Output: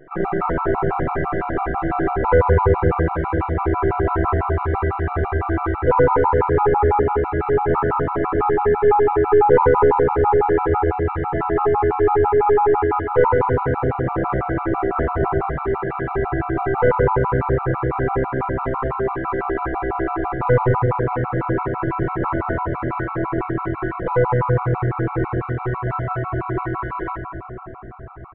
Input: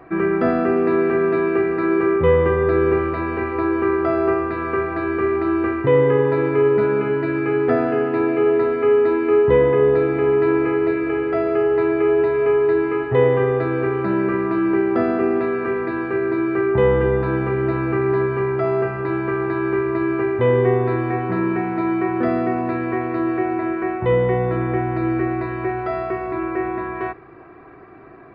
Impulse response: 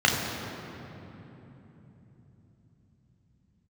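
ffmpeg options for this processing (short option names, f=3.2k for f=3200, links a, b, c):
-filter_complex "[0:a]bandreject=f=108.7:t=h:w=4,bandreject=f=217.4:t=h:w=4,bandreject=f=326.1:t=h:w=4,bandreject=f=434.8:t=h:w=4,bandreject=f=543.5:t=h:w=4,bandreject=f=652.2:t=h:w=4,bandreject=f=760.9:t=h:w=4,bandreject=f=869.6:t=h:w=4,bandreject=f=978.3:t=h:w=4,bandreject=f=1.087k:t=h:w=4,bandreject=f=1.1957k:t=h:w=4,bandreject=f=1.3044k:t=h:w=4,bandreject=f=1.4131k:t=h:w=4,bandreject=f=1.5218k:t=h:w=4,bandreject=f=1.6305k:t=h:w=4,bandreject=f=1.7392k:t=h:w=4,bandreject=f=1.8479k:t=h:w=4,bandreject=f=1.9566k:t=h:w=4,bandreject=f=2.0653k:t=h:w=4,bandreject=f=2.174k:t=h:w=4,bandreject=f=2.2827k:t=h:w=4,bandreject=f=2.3914k:t=h:w=4,bandreject=f=2.5001k:t=h:w=4,bandreject=f=2.6088k:t=h:w=4,bandreject=f=2.7175k:t=h:w=4,bandreject=f=2.8262k:t=h:w=4,bandreject=f=2.9349k:t=h:w=4,bandreject=f=3.0436k:t=h:w=4,bandreject=f=3.1523k:t=h:w=4,bandreject=f=3.261k:t=h:w=4,bandreject=f=3.3697k:t=h:w=4,bandreject=f=3.4784k:t=h:w=4,bandreject=f=3.5871k:t=h:w=4,bandreject=f=3.6958k:t=h:w=4,aresample=16000,aeval=exprs='max(val(0),0)':c=same,aresample=44100,lowpass=f=1.4k:t=q:w=2.2,asplit=2[a][b];[b]adelay=350,highpass=300,lowpass=3.4k,asoftclip=type=hard:threshold=-12dB,volume=-22dB[c];[a][c]amix=inputs=2:normalize=0,asplit=2[d][e];[1:a]atrim=start_sample=2205,asetrate=28224,aresample=44100[f];[e][f]afir=irnorm=-1:irlink=0,volume=-18.5dB[g];[d][g]amix=inputs=2:normalize=0,afftfilt=real='re*gt(sin(2*PI*6*pts/sr)*(1-2*mod(floor(b*sr/1024/720),2)),0)':imag='im*gt(sin(2*PI*6*pts/sr)*(1-2*mod(floor(b*sr/1024/720),2)),0)':win_size=1024:overlap=0.75"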